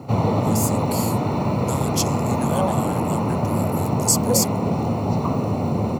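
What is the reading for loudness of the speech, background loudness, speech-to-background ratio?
-27.0 LUFS, -22.0 LUFS, -5.0 dB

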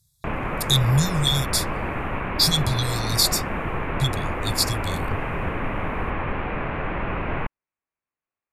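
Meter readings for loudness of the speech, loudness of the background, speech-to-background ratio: -22.5 LUFS, -28.5 LUFS, 6.0 dB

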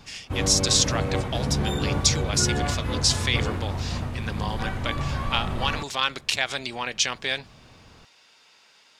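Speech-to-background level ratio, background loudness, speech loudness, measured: 3.0 dB, -28.5 LUFS, -25.5 LUFS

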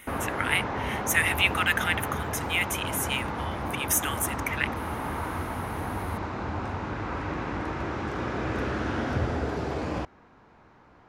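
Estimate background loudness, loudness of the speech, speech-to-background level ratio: -31.5 LUFS, -27.5 LUFS, 4.0 dB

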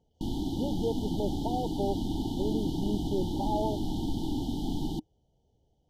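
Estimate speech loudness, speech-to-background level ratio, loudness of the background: -35.5 LUFS, -2.0 dB, -33.5 LUFS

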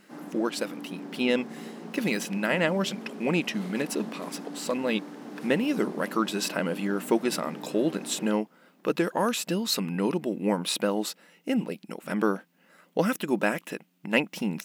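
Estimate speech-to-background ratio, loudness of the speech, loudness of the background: 12.5 dB, -28.5 LUFS, -41.0 LUFS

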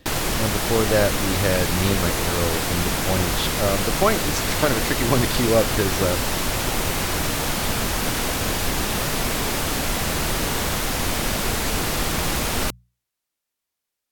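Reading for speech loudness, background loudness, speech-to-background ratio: -24.0 LUFS, -23.0 LUFS, -1.0 dB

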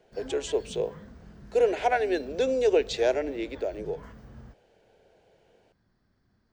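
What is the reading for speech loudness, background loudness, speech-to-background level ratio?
-27.5 LUFS, -47.5 LUFS, 20.0 dB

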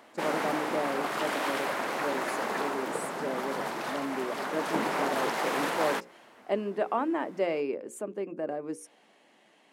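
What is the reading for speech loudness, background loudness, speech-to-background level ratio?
-34.5 LUFS, -32.0 LUFS, -2.5 dB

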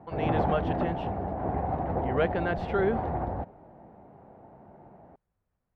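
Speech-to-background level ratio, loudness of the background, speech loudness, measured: -0.5 dB, -31.0 LUFS, -31.5 LUFS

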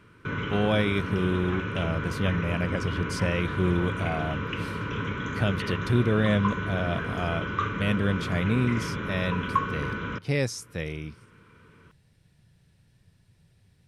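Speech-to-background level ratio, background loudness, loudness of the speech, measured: 3.0 dB, -31.5 LUFS, -28.5 LUFS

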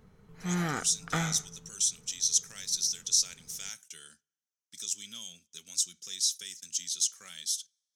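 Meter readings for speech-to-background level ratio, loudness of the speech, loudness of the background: 3.5 dB, -30.5 LUFS, -34.0 LUFS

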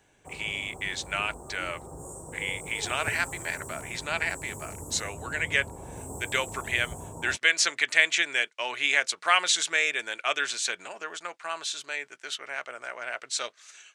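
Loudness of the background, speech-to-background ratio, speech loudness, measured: -41.0 LUFS, 13.0 dB, -28.0 LUFS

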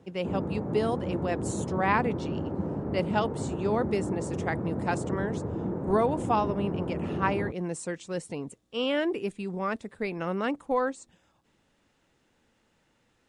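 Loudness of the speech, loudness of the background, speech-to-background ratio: -31.0 LUFS, -33.0 LUFS, 2.0 dB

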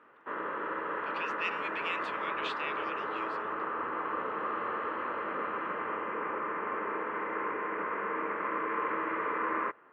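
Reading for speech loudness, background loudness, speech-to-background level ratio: -39.5 LUFS, -34.5 LUFS, -5.0 dB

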